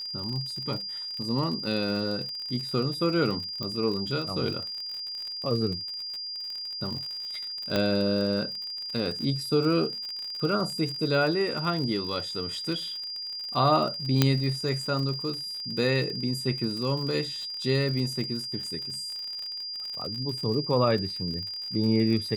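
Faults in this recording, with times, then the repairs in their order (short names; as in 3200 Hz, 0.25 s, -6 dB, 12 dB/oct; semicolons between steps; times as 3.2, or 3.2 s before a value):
crackle 59/s -33 dBFS
tone 4800 Hz -33 dBFS
3.63 pop -19 dBFS
7.76 pop -12 dBFS
14.22 pop -5 dBFS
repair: de-click; notch 4800 Hz, Q 30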